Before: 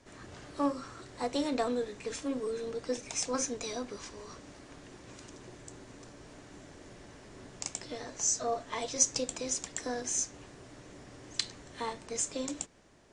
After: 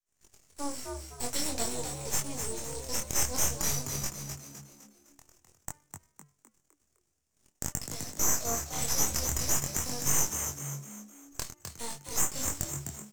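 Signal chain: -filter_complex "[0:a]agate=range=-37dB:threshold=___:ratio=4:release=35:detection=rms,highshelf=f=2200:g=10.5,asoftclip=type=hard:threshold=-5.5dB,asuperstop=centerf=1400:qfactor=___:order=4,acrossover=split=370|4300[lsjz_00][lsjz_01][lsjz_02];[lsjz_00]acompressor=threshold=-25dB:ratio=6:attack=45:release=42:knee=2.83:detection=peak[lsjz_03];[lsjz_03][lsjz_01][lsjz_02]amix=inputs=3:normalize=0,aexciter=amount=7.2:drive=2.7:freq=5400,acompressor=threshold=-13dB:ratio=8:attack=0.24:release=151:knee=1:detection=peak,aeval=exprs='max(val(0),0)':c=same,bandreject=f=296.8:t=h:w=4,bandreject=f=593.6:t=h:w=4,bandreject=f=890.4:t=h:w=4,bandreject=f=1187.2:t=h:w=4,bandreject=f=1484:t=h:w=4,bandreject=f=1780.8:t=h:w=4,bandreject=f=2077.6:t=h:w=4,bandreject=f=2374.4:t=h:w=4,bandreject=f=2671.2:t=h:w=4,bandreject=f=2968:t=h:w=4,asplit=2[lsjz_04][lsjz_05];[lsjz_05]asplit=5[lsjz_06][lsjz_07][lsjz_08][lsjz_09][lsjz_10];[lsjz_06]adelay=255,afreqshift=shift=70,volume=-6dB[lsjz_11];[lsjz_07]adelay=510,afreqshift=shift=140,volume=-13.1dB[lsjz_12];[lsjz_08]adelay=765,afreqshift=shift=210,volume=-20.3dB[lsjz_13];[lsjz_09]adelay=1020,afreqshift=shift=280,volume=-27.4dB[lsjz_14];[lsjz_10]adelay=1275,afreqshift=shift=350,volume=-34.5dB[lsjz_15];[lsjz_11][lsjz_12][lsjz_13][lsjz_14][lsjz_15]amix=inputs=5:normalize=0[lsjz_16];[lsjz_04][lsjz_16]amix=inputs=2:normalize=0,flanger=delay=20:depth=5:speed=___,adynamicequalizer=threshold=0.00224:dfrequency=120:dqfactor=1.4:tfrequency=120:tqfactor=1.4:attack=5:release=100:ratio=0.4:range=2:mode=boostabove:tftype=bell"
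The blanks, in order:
-44dB, 1.6, 0.49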